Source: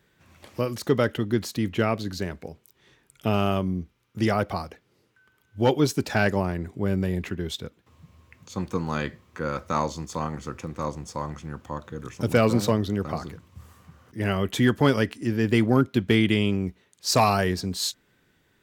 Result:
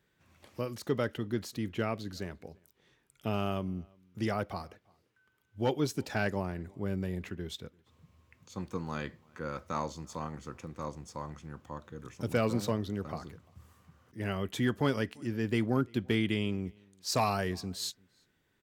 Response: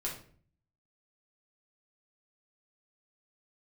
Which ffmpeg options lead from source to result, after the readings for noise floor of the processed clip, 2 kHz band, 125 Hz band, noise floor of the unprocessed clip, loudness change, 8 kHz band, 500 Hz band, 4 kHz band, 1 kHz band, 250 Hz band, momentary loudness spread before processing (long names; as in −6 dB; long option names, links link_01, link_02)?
−74 dBFS, −9.0 dB, −9.0 dB, −66 dBFS, −9.0 dB, −9.0 dB, −9.0 dB, −9.0 dB, −9.0 dB, −9.0 dB, 15 LU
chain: -filter_complex "[0:a]asplit=2[link_01][link_02];[link_02]adelay=344,volume=-28dB,highshelf=frequency=4000:gain=-7.74[link_03];[link_01][link_03]amix=inputs=2:normalize=0,volume=-9dB"